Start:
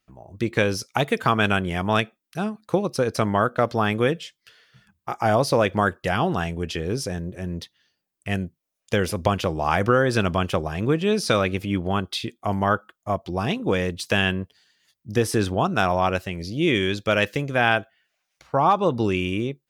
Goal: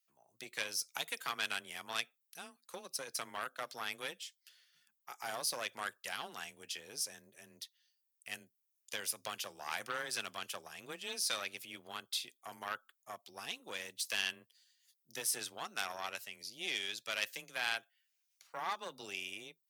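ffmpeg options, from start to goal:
-af "afreqshift=21,aeval=exprs='0.631*(cos(1*acos(clip(val(0)/0.631,-1,1)))-cos(1*PI/2))+0.0891*(cos(4*acos(clip(val(0)/0.631,-1,1)))-cos(4*PI/2))':c=same,aderivative,volume=0.668"

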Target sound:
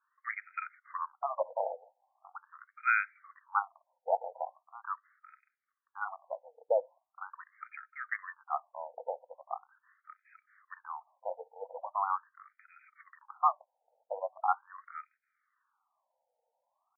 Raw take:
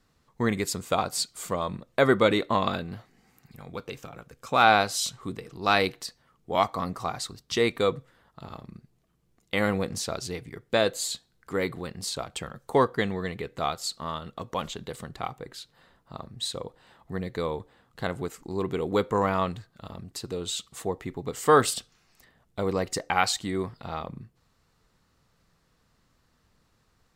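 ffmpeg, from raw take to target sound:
-af "atempo=1.6,afftfilt=real='re*between(b*sr/4096,180,3600)':imag='im*between(b*sr/4096,180,3600)':win_size=4096:overlap=0.75,afftfilt=real='re*between(b*sr/1024,650*pow(1800/650,0.5+0.5*sin(2*PI*0.41*pts/sr))/1.41,650*pow(1800/650,0.5+0.5*sin(2*PI*0.41*pts/sr))*1.41)':imag='im*between(b*sr/1024,650*pow(1800/650,0.5+0.5*sin(2*PI*0.41*pts/sr))/1.41,650*pow(1800/650,0.5+0.5*sin(2*PI*0.41*pts/sr))*1.41)':win_size=1024:overlap=0.75,volume=0.794"

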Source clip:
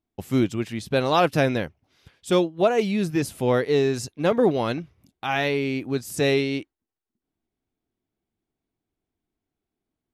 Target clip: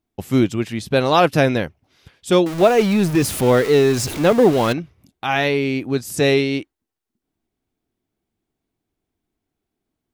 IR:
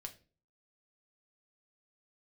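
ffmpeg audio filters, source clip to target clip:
-filter_complex "[0:a]asettb=1/sr,asplit=3[s0][s1][s2];[s0]atrim=end=2.464[s3];[s1]atrim=start=2.46:end=4.73,asetpts=PTS-STARTPTS,afade=t=in:d=0.004:c=qsin,afade=t=out:st=2.266:d=0.004:c=qsin,aeval=exprs='val(0)+0.5*0.0422*sgn(val(0))':c=same[s4];[s2]atrim=start=4.726[s5];[s3][s4]acrossfade=d=0.004:c1=hsin:c2=qsin[s6];[s6][s5]acrossfade=d=0.004:c1=qsin:c2=hsin,volume=1.78"

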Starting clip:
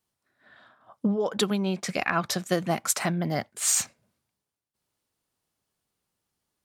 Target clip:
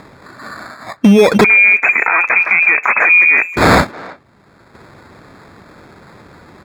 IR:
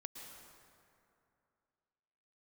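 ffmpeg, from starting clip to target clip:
-filter_complex "[0:a]acrusher=samples=15:mix=1:aa=0.000001,asoftclip=type=hard:threshold=0.0794,acompressor=threshold=0.0355:ratio=2,equalizer=f=730:t=o:w=1.4:g=-4.5,acompressor=mode=upward:threshold=0.00355:ratio=2.5,aemphasis=mode=reproduction:type=75kf,asettb=1/sr,asplit=3[s0][s1][s2];[s0]atrim=end=1.444[s3];[s1]atrim=start=1.44:end=3.56,asetpts=PTS-STARTPTS,afade=t=in:d=0.004:c=qsin,afade=t=out:st=2.116:d=0.004:c=qsin,lowpass=f=2200:t=q:w=0.5098,lowpass=f=2200:t=q:w=0.6013,lowpass=f=2200:t=q:w=0.9,lowpass=f=2200:t=q:w=2.563,afreqshift=-2600[s4];[s2]atrim=start=3.556[s5];[s3][s4]acrossfade=d=0.004:c1=hsin:c2=qsin[s6];[s6][s5]acrossfade=d=0.004:c1=qsin:c2=hsin,highpass=f=84:p=1,asplit=2[s7][s8];[s8]adelay=320,highpass=300,lowpass=3400,asoftclip=type=hard:threshold=0.0398,volume=0.0794[s9];[s7][s9]amix=inputs=2:normalize=0,alimiter=level_in=23.7:limit=0.891:release=50:level=0:latency=1,volume=0.891"

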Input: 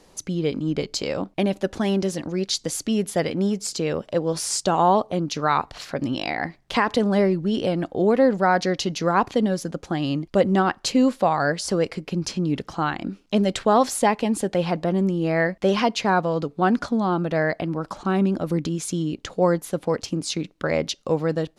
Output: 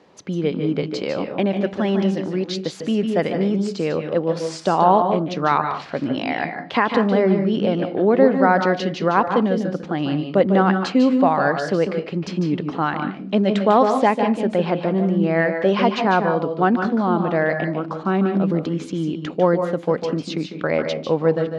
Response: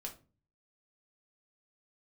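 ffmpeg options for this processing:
-filter_complex "[0:a]highpass=140,lowpass=3000,asplit=2[s0][s1];[1:a]atrim=start_sample=2205,adelay=148[s2];[s1][s2]afir=irnorm=-1:irlink=0,volume=0.668[s3];[s0][s3]amix=inputs=2:normalize=0,volume=1.33"

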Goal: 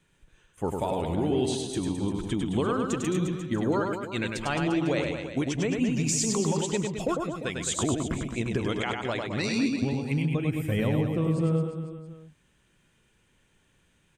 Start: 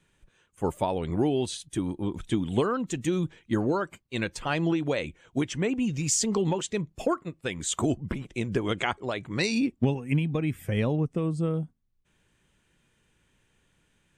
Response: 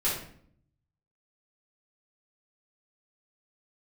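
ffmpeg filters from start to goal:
-filter_complex "[0:a]alimiter=limit=0.133:level=0:latency=1:release=234,asplit=2[s0][s1];[s1]aecho=0:1:100|215|347.2|499.3|674.2:0.631|0.398|0.251|0.158|0.1[s2];[s0][s2]amix=inputs=2:normalize=0"

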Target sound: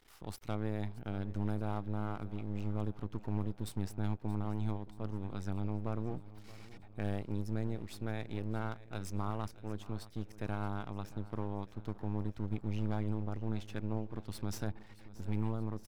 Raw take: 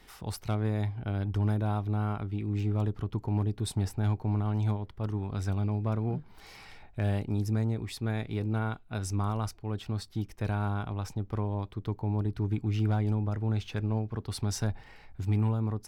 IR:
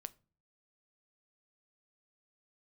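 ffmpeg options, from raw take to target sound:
-af "aeval=exprs='max(val(0),0)':c=same,aecho=1:1:627|1254|1881|2508|3135:0.126|0.0718|0.0409|0.0233|0.0133,volume=0.562"

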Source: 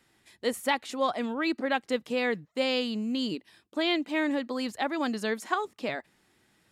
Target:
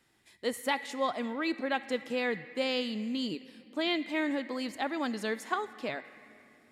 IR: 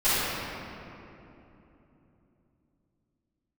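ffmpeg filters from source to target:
-filter_complex "[0:a]asplit=2[s0][s1];[s1]equalizer=f=2000:t=o:w=0.33:g=11[s2];[1:a]atrim=start_sample=2205,highshelf=f=2100:g=9[s3];[s2][s3]afir=irnorm=-1:irlink=0,volume=0.0158[s4];[s0][s4]amix=inputs=2:normalize=0,volume=0.668"

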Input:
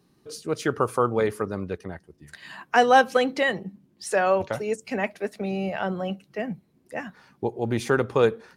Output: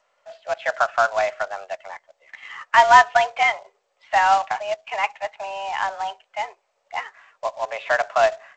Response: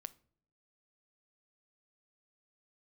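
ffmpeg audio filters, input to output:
-af "highpass=f=460:t=q:w=0.5412,highpass=f=460:t=q:w=1.307,lowpass=f=2900:t=q:w=0.5176,lowpass=f=2900:t=q:w=0.7071,lowpass=f=2900:t=q:w=1.932,afreqshift=200,acrusher=bits=3:mode=log:mix=0:aa=0.000001,volume=1.78" -ar 16000 -c:a g722

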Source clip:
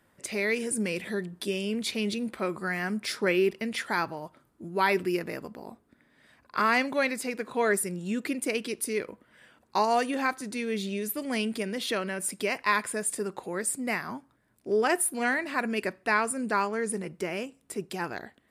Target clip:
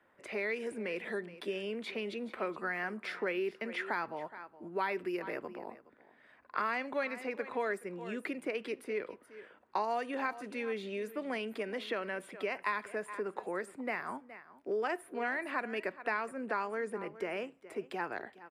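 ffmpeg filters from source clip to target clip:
-filter_complex "[0:a]asplit=2[s0][s1];[s1]aecho=0:1:418:0.112[s2];[s0][s2]amix=inputs=2:normalize=0,acrossover=split=200|3500[s3][s4][s5];[s3]acompressor=threshold=0.00562:ratio=4[s6];[s4]acompressor=threshold=0.0282:ratio=4[s7];[s5]acompressor=threshold=0.00891:ratio=4[s8];[s6][s7][s8]amix=inputs=3:normalize=0,acrossover=split=310 2800:gain=0.224 1 0.126[s9][s10][s11];[s9][s10][s11]amix=inputs=3:normalize=0"

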